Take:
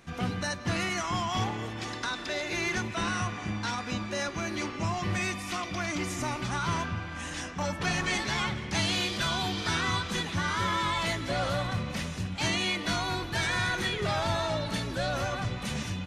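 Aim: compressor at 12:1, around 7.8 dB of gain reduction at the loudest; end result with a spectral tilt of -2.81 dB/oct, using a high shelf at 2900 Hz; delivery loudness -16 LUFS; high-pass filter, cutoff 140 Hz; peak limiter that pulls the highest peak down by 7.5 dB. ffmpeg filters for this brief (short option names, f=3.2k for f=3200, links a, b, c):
-af "highpass=140,highshelf=f=2.9k:g=6.5,acompressor=threshold=-31dB:ratio=12,volume=20.5dB,alimiter=limit=-7.5dB:level=0:latency=1"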